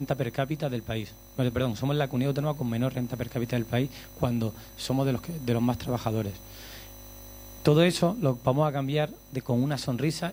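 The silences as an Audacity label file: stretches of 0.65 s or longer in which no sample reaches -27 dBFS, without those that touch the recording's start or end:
6.300000	7.650000	silence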